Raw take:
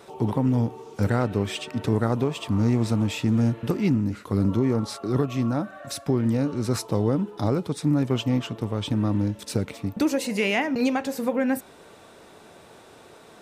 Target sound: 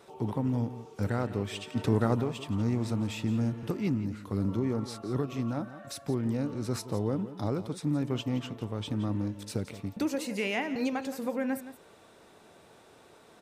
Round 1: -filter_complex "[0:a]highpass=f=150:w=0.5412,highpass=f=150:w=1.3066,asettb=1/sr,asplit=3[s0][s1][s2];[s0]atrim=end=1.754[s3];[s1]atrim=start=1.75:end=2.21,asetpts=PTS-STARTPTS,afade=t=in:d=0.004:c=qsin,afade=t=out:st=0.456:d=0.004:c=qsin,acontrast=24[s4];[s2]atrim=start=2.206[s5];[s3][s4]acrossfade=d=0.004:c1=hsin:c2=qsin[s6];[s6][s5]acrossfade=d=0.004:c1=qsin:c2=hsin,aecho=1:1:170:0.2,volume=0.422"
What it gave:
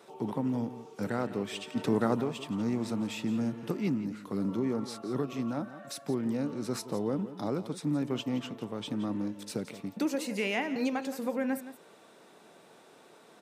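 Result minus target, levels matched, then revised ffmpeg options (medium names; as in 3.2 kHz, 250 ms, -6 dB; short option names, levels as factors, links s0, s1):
125 Hz band -6.0 dB
-filter_complex "[0:a]asettb=1/sr,asplit=3[s0][s1][s2];[s0]atrim=end=1.754[s3];[s1]atrim=start=1.75:end=2.21,asetpts=PTS-STARTPTS,afade=t=in:d=0.004:c=qsin,afade=t=out:st=0.456:d=0.004:c=qsin,acontrast=24[s4];[s2]atrim=start=2.206[s5];[s3][s4]acrossfade=d=0.004:c1=hsin:c2=qsin[s6];[s6][s5]acrossfade=d=0.004:c1=qsin:c2=hsin,aecho=1:1:170:0.2,volume=0.422"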